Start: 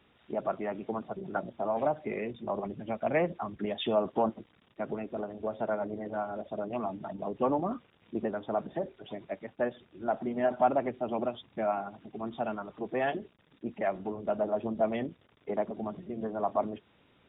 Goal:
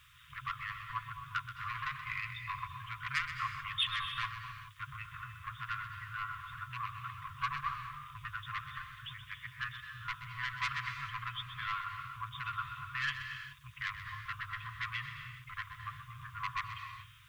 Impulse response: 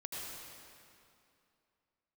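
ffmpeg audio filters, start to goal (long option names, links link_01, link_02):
-filter_complex "[0:a]asoftclip=type=tanh:threshold=-27.5dB,equalizer=frequency=430:width_type=o:width=0.2:gain=-15,asplit=2[link_01][link_02];[1:a]atrim=start_sample=2205,afade=type=out:start_time=0.36:duration=0.01,atrim=end_sample=16317,adelay=127[link_03];[link_02][link_03]afir=irnorm=-1:irlink=0,volume=-5dB[link_04];[link_01][link_04]amix=inputs=2:normalize=0,acrusher=bits=11:mix=0:aa=0.000001,afftfilt=real='re*(1-between(b*sr/4096,140,1000))':imag='im*(1-between(b*sr/4096,140,1000))':win_size=4096:overlap=0.75,acrossover=split=260[link_05][link_06];[link_05]alimiter=level_in=28dB:limit=-24dB:level=0:latency=1:release=56,volume=-28dB[link_07];[link_07][link_06]amix=inputs=2:normalize=0,volume=6.5dB"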